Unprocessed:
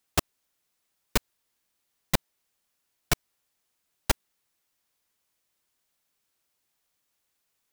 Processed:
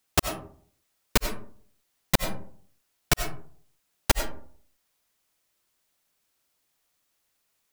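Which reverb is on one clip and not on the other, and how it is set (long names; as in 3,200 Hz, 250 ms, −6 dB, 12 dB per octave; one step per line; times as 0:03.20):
comb and all-pass reverb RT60 0.54 s, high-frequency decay 0.4×, pre-delay 50 ms, DRR 6.5 dB
level +2.5 dB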